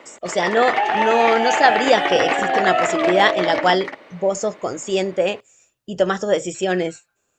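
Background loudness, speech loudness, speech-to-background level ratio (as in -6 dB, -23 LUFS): -20.0 LUFS, -20.0 LUFS, 0.0 dB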